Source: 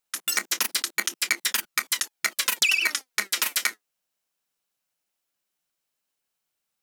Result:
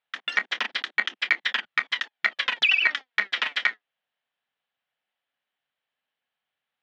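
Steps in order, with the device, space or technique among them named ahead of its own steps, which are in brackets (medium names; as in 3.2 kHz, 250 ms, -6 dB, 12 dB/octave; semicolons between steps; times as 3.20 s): guitar cabinet (cabinet simulation 100–3400 Hz, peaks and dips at 180 Hz -7 dB, 340 Hz -9 dB, 750 Hz +4 dB, 1.8 kHz +7 dB, 3.3 kHz +6 dB)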